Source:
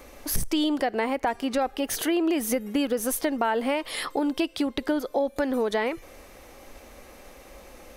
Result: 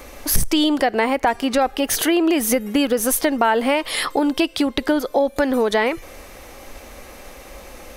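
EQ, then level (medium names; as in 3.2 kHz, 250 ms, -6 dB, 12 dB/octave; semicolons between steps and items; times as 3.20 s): peaking EQ 330 Hz -2.5 dB 2.5 oct; +9.0 dB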